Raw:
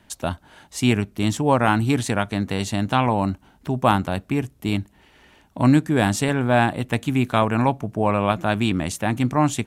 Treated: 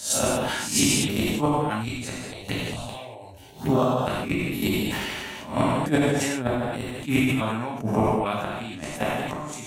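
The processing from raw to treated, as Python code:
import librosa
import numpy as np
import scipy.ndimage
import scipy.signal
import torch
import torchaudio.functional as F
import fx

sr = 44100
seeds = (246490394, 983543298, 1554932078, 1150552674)

y = fx.spec_swells(x, sr, rise_s=0.38)
y = scipy.signal.sosfilt(scipy.signal.butter(2, 93.0, 'highpass', fs=sr, output='sos'), y)
y = fx.high_shelf(y, sr, hz=2700.0, db=5.0)
y = fx.gate_flip(y, sr, shuts_db=-10.0, range_db=-38)
y = fx.env_phaser(y, sr, low_hz=190.0, high_hz=2100.0, full_db=-23.5, at=(2.11, 3.89), fade=0.02)
y = fx.rev_gated(y, sr, seeds[0], gate_ms=260, shape='falling', drr_db=-2.0)
y = fx.sustainer(y, sr, db_per_s=22.0)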